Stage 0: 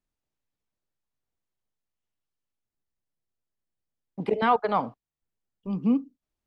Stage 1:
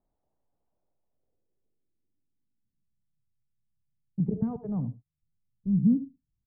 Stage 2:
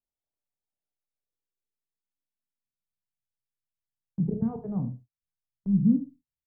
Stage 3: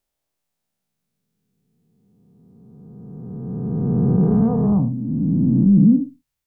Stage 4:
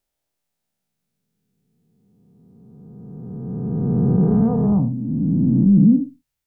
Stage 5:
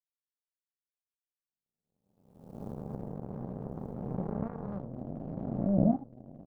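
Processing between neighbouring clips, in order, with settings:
multi-tap delay 69/80 ms −19/−16 dB; low-pass filter sweep 740 Hz → 140 Hz, 0:00.84–0:03.20; level +6 dB
noise gate −46 dBFS, range −20 dB; ambience of single reflections 31 ms −7.5 dB, 55 ms −13 dB
peak hold with a rise ahead of every peak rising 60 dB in 2.69 s; in parallel at +2.5 dB: brickwall limiter −21 dBFS, peak gain reduction 10 dB; on the sum: level +2.5 dB
notch filter 1,100 Hz, Q 15
camcorder AGC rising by 65 dB per second; power curve on the samples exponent 3; single-tap delay 1,190 ms −9.5 dB; level −7 dB

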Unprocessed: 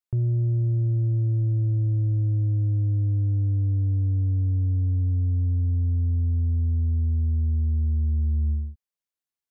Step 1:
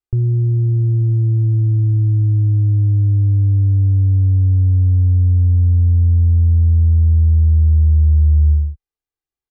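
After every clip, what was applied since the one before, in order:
spectral tilt −2.5 dB per octave
notch filter 540 Hz, Q 17
comb filter 2.5 ms, depth 80%
level −1 dB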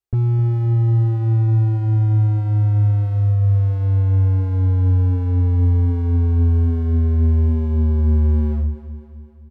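gain into a clipping stage and back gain 16.5 dB
notch comb filter 300 Hz
repeating echo 259 ms, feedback 53%, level −12 dB
level +2 dB

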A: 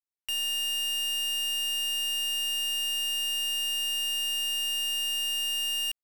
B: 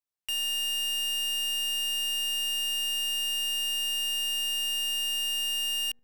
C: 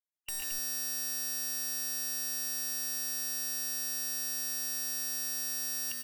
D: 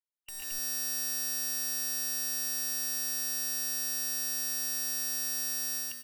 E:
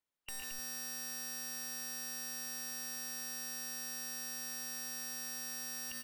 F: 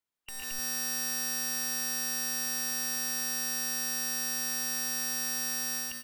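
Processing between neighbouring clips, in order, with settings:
delay with a low-pass on its return 75 ms, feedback 45%, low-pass 430 Hz, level −14 dB
multi-tap delay 114/135/138/148/222 ms −4.5/−8.5/−3.5/−8/−5.5 dB; gate on every frequency bin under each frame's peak −10 dB weak
automatic gain control gain up to 9.5 dB; level −7.5 dB
high-shelf EQ 4,000 Hz −9.5 dB; brickwall limiter −40.5 dBFS, peak gain reduction 10.5 dB; level +7.5 dB
notch filter 570 Hz, Q 14; automatic gain control gain up to 10 dB

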